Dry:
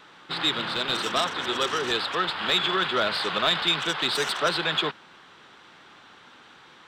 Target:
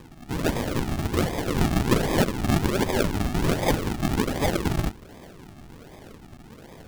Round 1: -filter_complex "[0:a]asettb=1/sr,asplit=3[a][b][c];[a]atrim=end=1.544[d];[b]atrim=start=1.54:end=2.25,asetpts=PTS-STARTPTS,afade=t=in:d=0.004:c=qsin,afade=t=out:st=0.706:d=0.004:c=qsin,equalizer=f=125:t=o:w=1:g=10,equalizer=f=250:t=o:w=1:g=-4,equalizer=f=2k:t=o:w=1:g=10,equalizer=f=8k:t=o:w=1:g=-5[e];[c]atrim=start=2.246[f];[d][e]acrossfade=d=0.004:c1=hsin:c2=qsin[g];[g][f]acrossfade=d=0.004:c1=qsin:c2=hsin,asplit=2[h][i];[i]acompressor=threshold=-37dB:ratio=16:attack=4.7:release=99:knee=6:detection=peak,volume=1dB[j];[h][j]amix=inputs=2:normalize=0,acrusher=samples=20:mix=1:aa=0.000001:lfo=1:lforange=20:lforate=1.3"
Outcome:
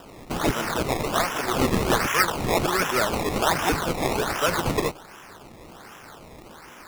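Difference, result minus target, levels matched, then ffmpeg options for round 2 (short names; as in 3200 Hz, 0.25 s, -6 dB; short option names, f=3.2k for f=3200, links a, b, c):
decimation with a swept rate: distortion -15 dB
-filter_complex "[0:a]asettb=1/sr,asplit=3[a][b][c];[a]atrim=end=1.544[d];[b]atrim=start=1.54:end=2.25,asetpts=PTS-STARTPTS,afade=t=in:d=0.004:c=qsin,afade=t=out:st=0.706:d=0.004:c=qsin,equalizer=f=125:t=o:w=1:g=10,equalizer=f=250:t=o:w=1:g=-4,equalizer=f=2k:t=o:w=1:g=10,equalizer=f=8k:t=o:w=1:g=-5[e];[c]atrim=start=2.246[f];[d][e]acrossfade=d=0.004:c1=hsin:c2=qsin[g];[g][f]acrossfade=d=0.004:c1=qsin:c2=hsin,asplit=2[h][i];[i]acompressor=threshold=-37dB:ratio=16:attack=4.7:release=99:knee=6:detection=peak,volume=1dB[j];[h][j]amix=inputs=2:normalize=0,acrusher=samples=61:mix=1:aa=0.000001:lfo=1:lforange=61:lforate=1.3"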